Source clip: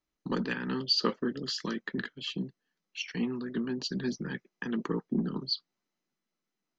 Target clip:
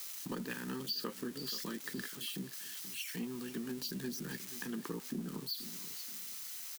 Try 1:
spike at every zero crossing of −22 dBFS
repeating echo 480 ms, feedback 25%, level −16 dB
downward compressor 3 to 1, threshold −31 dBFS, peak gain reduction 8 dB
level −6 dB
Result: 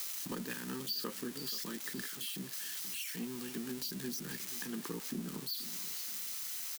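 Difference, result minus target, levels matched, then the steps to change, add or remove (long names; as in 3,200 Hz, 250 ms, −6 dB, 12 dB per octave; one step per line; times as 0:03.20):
spike at every zero crossing: distortion +6 dB
change: spike at every zero crossing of −28 dBFS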